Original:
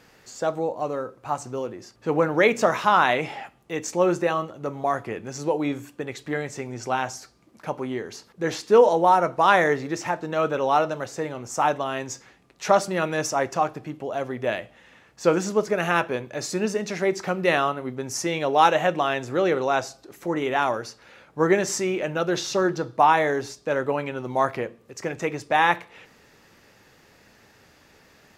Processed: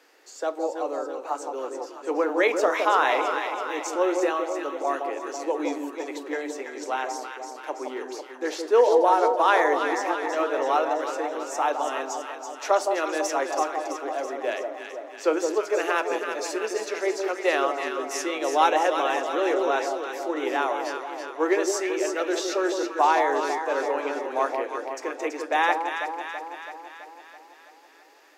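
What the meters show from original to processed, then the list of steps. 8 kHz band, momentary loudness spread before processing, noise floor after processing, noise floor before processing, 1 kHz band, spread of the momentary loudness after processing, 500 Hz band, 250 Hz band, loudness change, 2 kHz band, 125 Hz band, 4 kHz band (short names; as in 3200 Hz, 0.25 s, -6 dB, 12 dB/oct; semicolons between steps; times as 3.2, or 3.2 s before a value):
-1.5 dB, 14 LU, -48 dBFS, -57 dBFS, -1.0 dB, 13 LU, -1.0 dB, -3.0 dB, -1.5 dB, -1.5 dB, under -40 dB, -1.5 dB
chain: steep high-pass 280 Hz 72 dB/oct; echo with dull and thin repeats by turns 0.165 s, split 980 Hz, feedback 77%, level -4 dB; gain -3 dB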